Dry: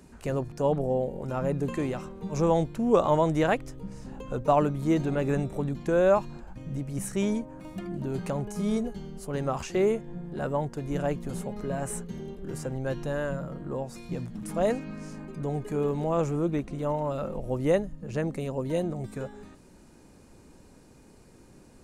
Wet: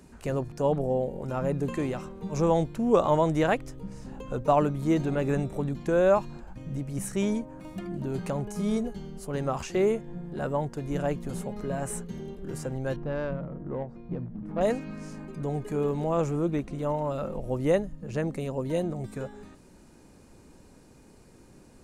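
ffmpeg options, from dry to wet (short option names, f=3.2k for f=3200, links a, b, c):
-filter_complex "[0:a]asettb=1/sr,asplit=3[a][b][c];[a]atrim=end=12.964[d];[b]atrim=start=12.96:end=14.61,asetpts=PTS-STARTPTS,afade=t=in:d=0.004:c=qsin,afade=t=out:st=1.646:d=0.004:c=qsin,adynamicsmooth=sensitivity=1.5:basefreq=910[e];[c]atrim=start=14.606[f];[d][e]acrossfade=d=0.004:c1=hsin:c2=qsin[g];[g][f]acrossfade=d=0.004:c1=qsin:c2=hsin"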